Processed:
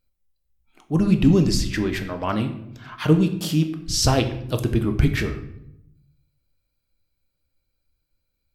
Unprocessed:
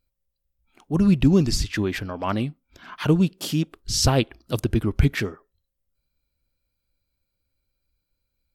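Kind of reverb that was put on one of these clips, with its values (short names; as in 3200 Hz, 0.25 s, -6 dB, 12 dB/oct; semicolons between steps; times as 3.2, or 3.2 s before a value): shoebox room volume 200 m³, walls mixed, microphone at 0.5 m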